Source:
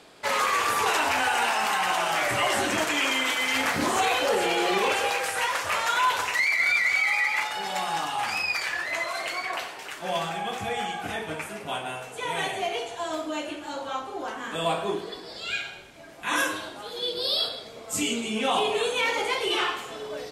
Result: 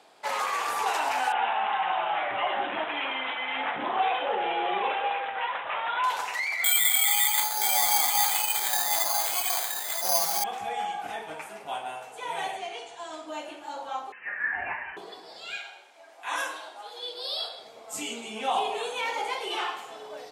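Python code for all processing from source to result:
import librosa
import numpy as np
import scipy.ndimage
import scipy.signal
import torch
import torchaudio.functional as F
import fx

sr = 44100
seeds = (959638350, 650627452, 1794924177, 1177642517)

y = fx.chain(x, sr, fx.bandpass_edges(low_hz=110.0, high_hz=5800.0),
    fx.resample_bad(factor=6, down='none', up='filtered'), at=(1.32, 6.04))
y = fx.chain(y, sr, fx.bandpass_edges(low_hz=120.0, high_hz=2600.0),
    fx.echo_single(ms=974, db=-5.0),
    fx.resample_bad(factor=8, down='filtered', up='zero_stuff'), at=(6.64, 10.44))
y = fx.chain(y, sr, fx.steep_lowpass(hz=10000.0, slope=36),
    fx.peak_eq(hz=680.0, db=-6.5, octaves=1.3), at=(12.57, 13.28))
y = fx.chain(y, sr, fx.highpass_res(hz=1700.0, q=9.5),
    fx.freq_invert(carrier_hz=3400), at=(14.12, 14.97))
y = fx.chain(y, sr, fx.highpass(hz=440.0, slope=12),
    fx.peak_eq(hz=13000.0, db=-6.0, octaves=0.34), at=(15.58, 17.59))
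y = fx.highpass(y, sr, hz=360.0, slope=6)
y = fx.peak_eq(y, sr, hz=800.0, db=9.0, octaves=0.61)
y = F.gain(torch.from_numpy(y), -6.5).numpy()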